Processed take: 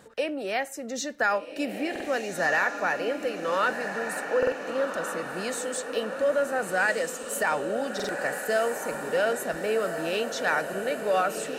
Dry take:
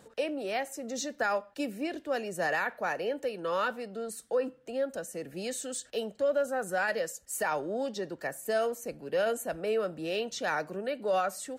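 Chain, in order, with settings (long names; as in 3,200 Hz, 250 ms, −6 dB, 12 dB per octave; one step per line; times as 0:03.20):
parametric band 1,700 Hz +4.5 dB 1.2 octaves
on a send: feedback delay with all-pass diffusion 1,459 ms, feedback 56%, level −7 dB
on the sum: buffer that repeats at 0:01.91/0:04.38/0:07.95, samples 2,048, times 2
level +2.5 dB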